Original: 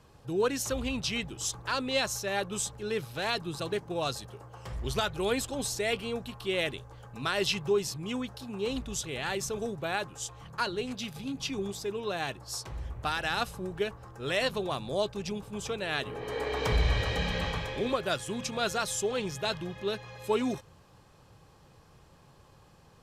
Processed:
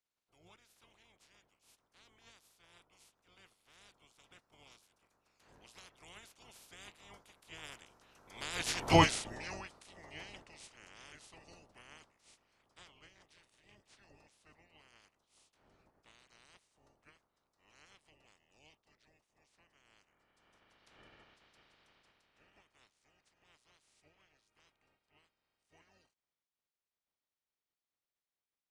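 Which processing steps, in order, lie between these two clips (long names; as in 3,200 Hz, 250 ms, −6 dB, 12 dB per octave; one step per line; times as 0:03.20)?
ceiling on every frequency bin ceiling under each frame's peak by 28 dB
source passing by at 0:07.21, 24 m/s, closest 2 metres
change of speed 0.802×
level +3 dB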